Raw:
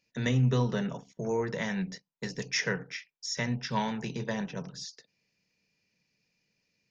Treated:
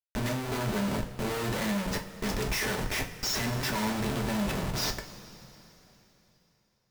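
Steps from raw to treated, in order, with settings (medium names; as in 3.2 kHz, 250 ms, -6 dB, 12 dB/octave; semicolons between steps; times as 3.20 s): Schmitt trigger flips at -44 dBFS; two-slope reverb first 0.29 s, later 3.5 s, from -18 dB, DRR 2.5 dB; trim +1.5 dB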